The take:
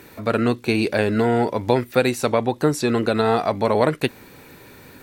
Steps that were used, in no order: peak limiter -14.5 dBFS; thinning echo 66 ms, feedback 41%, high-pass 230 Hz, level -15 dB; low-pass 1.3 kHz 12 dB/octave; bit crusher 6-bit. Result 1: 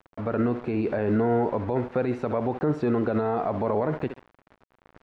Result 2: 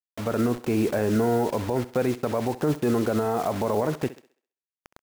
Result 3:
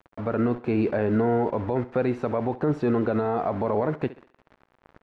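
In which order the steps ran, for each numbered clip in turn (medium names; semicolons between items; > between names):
thinning echo > bit crusher > peak limiter > low-pass; low-pass > bit crusher > peak limiter > thinning echo; bit crusher > low-pass > peak limiter > thinning echo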